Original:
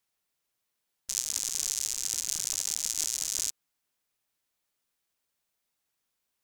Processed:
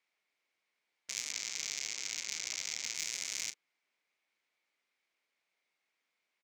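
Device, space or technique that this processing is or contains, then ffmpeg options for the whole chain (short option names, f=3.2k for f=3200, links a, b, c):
intercom: -filter_complex "[0:a]asettb=1/sr,asplit=3[a][b][c];[a]atrim=end=1.314[d];[b]atrim=start=1.31:end=2.95,asetpts=PTS-STARTPTS,afade=t=in:d=0.004:c=qsin,afade=t=out:st=1.636:d=0.004:c=qsin,lowpass=f=7.8k:w=0.5412,lowpass=f=7.8k:w=1.3066[e];[c]atrim=start=2.946[f];[d][e]acrossfade=d=0.004:c1=hsin:c2=qsin[g];[g][f]acrossfade=d=0.004:c1=qsin:c2=hsin,highpass=330,lowpass=4.7k,equalizer=f=2.2k:t=o:w=0.35:g=11.5,asoftclip=type=tanh:threshold=-17.5dB,lowshelf=f=280:g=5,asplit=2[h][i];[i]adelay=36,volume=-12dB[j];[h][j]amix=inputs=2:normalize=0"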